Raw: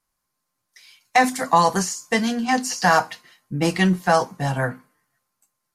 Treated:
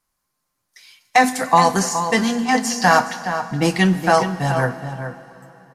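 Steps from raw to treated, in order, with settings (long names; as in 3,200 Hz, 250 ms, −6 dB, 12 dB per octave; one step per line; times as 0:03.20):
slap from a distant wall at 72 metres, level −9 dB
dense smooth reverb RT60 3.8 s, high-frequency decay 0.85×, DRR 14 dB
level +2.5 dB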